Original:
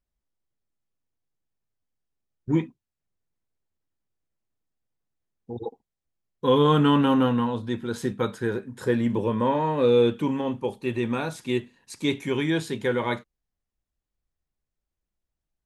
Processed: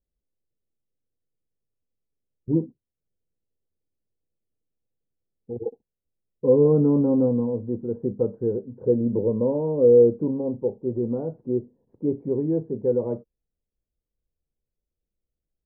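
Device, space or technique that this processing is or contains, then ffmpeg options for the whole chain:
under water: -af "lowpass=frequency=590:width=0.5412,lowpass=frequency=590:width=1.3066,equalizer=frequency=480:width_type=o:width=0.42:gain=6"

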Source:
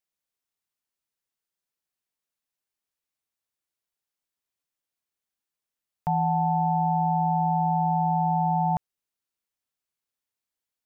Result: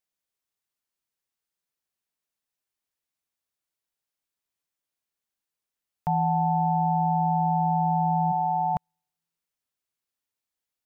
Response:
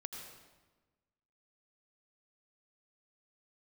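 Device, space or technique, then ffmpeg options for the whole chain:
keyed gated reverb: -filter_complex "[0:a]asplit=3[link_01][link_02][link_03];[1:a]atrim=start_sample=2205[link_04];[link_02][link_04]afir=irnorm=-1:irlink=0[link_05];[link_03]apad=whole_len=478658[link_06];[link_05][link_06]sidechaingate=range=-50dB:threshold=-19dB:ratio=16:detection=peak,volume=-4.5dB[link_07];[link_01][link_07]amix=inputs=2:normalize=0,asplit=3[link_08][link_09][link_10];[link_08]afade=type=out:start_time=8.31:duration=0.02[link_11];[link_09]highpass=270,afade=type=in:start_time=8.31:duration=0.02,afade=type=out:start_time=8.74:duration=0.02[link_12];[link_10]afade=type=in:start_time=8.74:duration=0.02[link_13];[link_11][link_12][link_13]amix=inputs=3:normalize=0"

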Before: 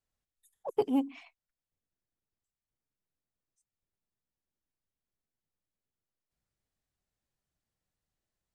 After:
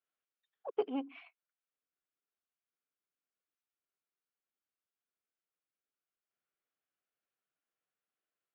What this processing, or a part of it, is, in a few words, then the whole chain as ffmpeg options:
phone earpiece: -af "highpass=450,equalizer=frequency=590:width_type=q:width=4:gain=-4,equalizer=frequency=900:width_type=q:width=4:gain=-8,equalizer=frequency=1400:width_type=q:width=4:gain=4,equalizer=frequency=1900:width_type=q:width=4:gain=-4,lowpass=frequency=3000:width=0.5412,lowpass=frequency=3000:width=1.3066"

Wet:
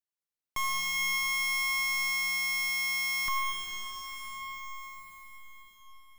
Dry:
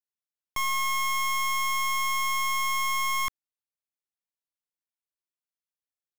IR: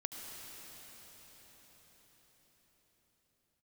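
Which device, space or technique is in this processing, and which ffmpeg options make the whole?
cathedral: -filter_complex "[1:a]atrim=start_sample=2205[link_01];[0:a][link_01]afir=irnorm=-1:irlink=0,asettb=1/sr,asplit=3[link_02][link_03][link_04];[link_02]atrim=end=2.694[link_05];[link_03]atrim=start=2.69:end=3.26,asetpts=PTS-STARTPTS,afade=type=in:duration=0.004:curve=qsin,afade=type=out:start_time=0.566:duration=0.004:curve=qsin,highpass=frequency=85:poles=1[link_06];[link_04]atrim=start=3.256[link_07];[link_05][link_06]acrossfade=duration=0.004:curve1=hsin:curve2=qsin[link_08];[link_08][link_07]acrossfade=duration=0.004:curve1=qsin:curve2=hsin"

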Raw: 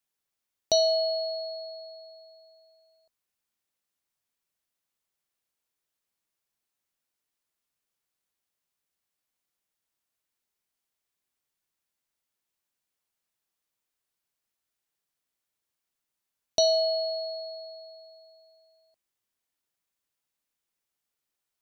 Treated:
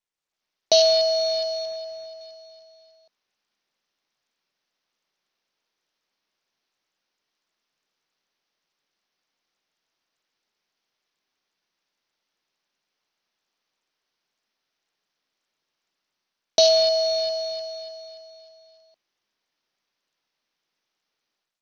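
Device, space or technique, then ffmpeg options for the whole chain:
Bluetooth headset: -filter_complex "[0:a]asettb=1/sr,asplit=3[link_01][link_02][link_03];[link_01]atrim=end=1.654[link_04];[link_02]atrim=start=1.65:end=2.21,asetpts=PTS-STARTPTS,afade=type=in:duration=0.004:curve=qsin,afade=type=out:start_time=0.556:duration=0.004:curve=qsin,aemphasis=mode=reproduction:type=cd[link_05];[link_03]atrim=start=2.206[link_06];[link_04][link_05]acrossfade=duration=0.004:curve1=hsin:curve2=qsin[link_07];[link_07][link_06]acrossfade=duration=0.004:curve1=qsin:curve2=hsin,bandreject=frequency=60:width_type=h:width=6,bandreject=frequency=120:width_type=h:width=6,bandreject=frequency=180:width_type=h:width=6,bandreject=frequency=240:width_type=h:width=6,bandreject=frequency=300:width_type=h:width=6,asettb=1/sr,asplit=3[link_08][link_09][link_10];[link_08]atrim=end=16.824[link_11];[link_09]atrim=start=16.82:end=17.34,asetpts=PTS-STARTPTS,afade=type=in:duration=0.004:curve=qsin,afade=type=out:start_time=0.516:duration=0.004:curve=qsin,equalizer=frequency=2000:width_type=o:width=0.38:gain=-3[link_12];[link_10]atrim=start=17.336[link_13];[link_11][link_12]acrossfade=duration=0.004:curve1=hsin:curve2=qsin[link_14];[link_14][link_13]acrossfade=duration=0.004:curve1=qsin:curve2=hsin,highpass=170,dynaudnorm=framelen=140:gausssize=5:maxgain=13.5dB,aresample=16000,aresample=44100,volume=-4.5dB" -ar 48000 -c:a sbc -b:a 64k

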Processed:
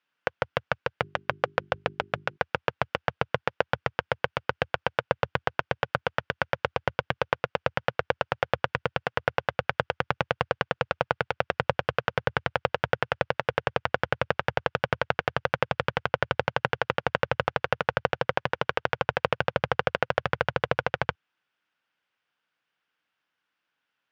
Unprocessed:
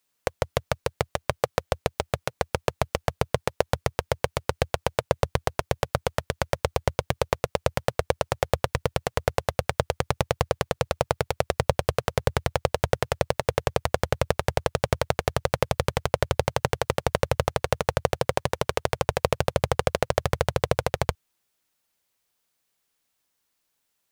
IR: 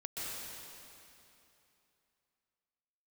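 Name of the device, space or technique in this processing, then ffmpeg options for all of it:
kitchen radio: -filter_complex "[0:a]highpass=160,equalizer=frequency=220:width_type=q:width=4:gain=-4,equalizer=frequency=400:width_type=q:width=4:gain=-6,equalizer=frequency=630:width_type=q:width=4:gain=-4,equalizer=frequency=1500:width_type=q:width=4:gain=8,equalizer=frequency=2800:width_type=q:width=4:gain=3,equalizer=frequency=4100:width_type=q:width=4:gain=-7,lowpass=frequency=4100:width=0.5412,lowpass=frequency=4100:width=1.3066,asplit=3[link_01][link_02][link_03];[link_01]afade=type=out:start_time=1.02:duration=0.02[link_04];[link_02]bandreject=frequency=50:width_type=h:width=6,bandreject=frequency=100:width_type=h:width=6,bandreject=frequency=150:width_type=h:width=6,bandreject=frequency=200:width_type=h:width=6,bandreject=frequency=250:width_type=h:width=6,bandreject=frequency=300:width_type=h:width=6,bandreject=frequency=350:width_type=h:width=6,bandreject=frequency=400:width_type=h:width=6,afade=type=in:start_time=1.02:duration=0.02,afade=type=out:start_time=2.36:duration=0.02[link_05];[link_03]afade=type=in:start_time=2.36:duration=0.02[link_06];[link_04][link_05][link_06]amix=inputs=3:normalize=0"

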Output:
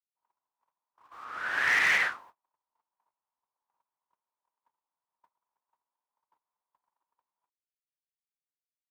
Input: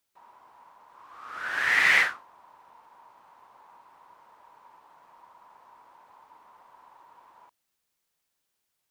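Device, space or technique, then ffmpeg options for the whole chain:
limiter into clipper: -filter_complex "[0:a]agate=range=-38dB:threshold=-49dB:ratio=16:detection=peak,asettb=1/sr,asplit=3[link_01][link_02][link_03];[link_01]atrim=end=1.244[link_04];[link_02]atrim=start=1.24:end=2.12,asetpts=PTS-STARTPTS,afade=type=in:duration=0.004:curve=qsin,afade=type=out:start_time=0.876:duration=0.004:curve=qsin,highshelf=frequency=5100:gain=-5[link_05];[link_03]atrim=start=2.116[link_06];[link_04][link_05]acrossfade=duration=0.004:curve1=hsin:curve2=qsin[link_07];[link_07][link_06]acrossfade=duration=0.004:curve1=qsin:curve2=hsin,alimiter=limit=-14dB:level=0:latency=1:release=98,asoftclip=type=hard:threshold=-18.5dB"

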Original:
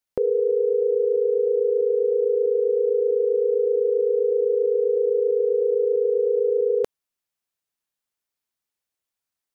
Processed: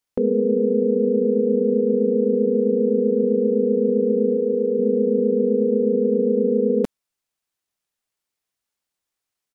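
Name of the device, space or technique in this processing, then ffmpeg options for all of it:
octave pedal: -filter_complex "[0:a]asplit=2[link_01][link_02];[link_02]asetrate=22050,aresample=44100,atempo=2,volume=-2dB[link_03];[link_01][link_03]amix=inputs=2:normalize=0,asplit=3[link_04][link_05][link_06];[link_04]afade=type=out:start_time=4.35:duration=0.02[link_07];[link_05]highpass=280,afade=type=in:start_time=4.35:duration=0.02,afade=type=out:start_time=4.78:duration=0.02[link_08];[link_06]afade=type=in:start_time=4.78:duration=0.02[link_09];[link_07][link_08][link_09]amix=inputs=3:normalize=0"

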